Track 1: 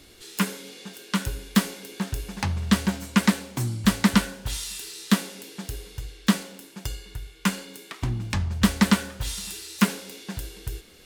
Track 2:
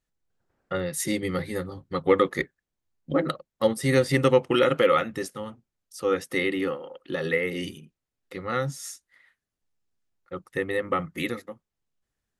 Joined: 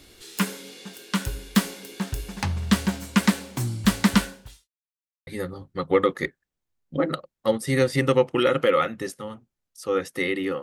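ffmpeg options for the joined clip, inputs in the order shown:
-filter_complex "[0:a]apad=whole_dur=10.62,atrim=end=10.62,asplit=2[a][b];[a]atrim=end=4.69,asetpts=PTS-STARTPTS,afade=t=out:st=4.22:d=0.47:c=qua[c];[b]atrim=start=4.69:end=5.27,asetpts=PTS-STARTPTS,volume=0[d];[1:a]atrim=start=1.43:end=6.78,asetpts=PTS-STARTPTS,afade=t=in:d=0.004:c=hsin[e];[c][d][e]concat=n=3:v=0:a=1"

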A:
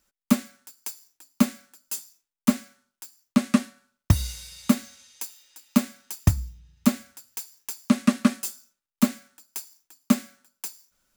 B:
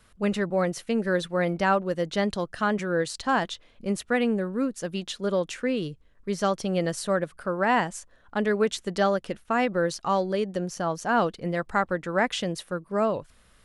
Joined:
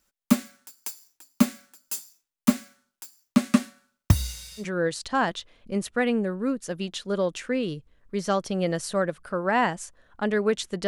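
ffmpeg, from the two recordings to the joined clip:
-filter_complex "[0:a]apad=whole_dur=10.87,atrim=end=10.87,atrim=end=4.67,asetpts=PTS-STARTPTS[a];[1:a]atrim=start=2.71:end=9.01,asetpts=PTS-STARTPTS[b];[a][b]acrossfade=d=0.1:c1=tri:c2=tri"

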